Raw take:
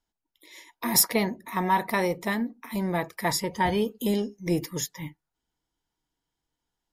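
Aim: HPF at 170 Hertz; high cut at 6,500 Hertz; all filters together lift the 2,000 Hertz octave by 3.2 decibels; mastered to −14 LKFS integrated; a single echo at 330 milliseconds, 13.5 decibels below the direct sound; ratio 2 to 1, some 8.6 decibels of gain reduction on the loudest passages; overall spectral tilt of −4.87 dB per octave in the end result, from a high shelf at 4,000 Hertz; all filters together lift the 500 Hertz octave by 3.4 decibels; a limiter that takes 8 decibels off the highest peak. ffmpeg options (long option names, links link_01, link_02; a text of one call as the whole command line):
ffmpeg -i in.wav -af "highpass=170,lowpass=6500,equalizer=frequency=500:width_type=o:gain=4.5,equalizer=frequency=2000:width_type=o:gain=5,highshelf=frequency=4000:gain=-8,acompressor=threshold=-33dB:ratio=2,alimiter=limit=-23dB:level=0:latency=1,aecho=1:1:330:0.211,volume=21dB" out.wav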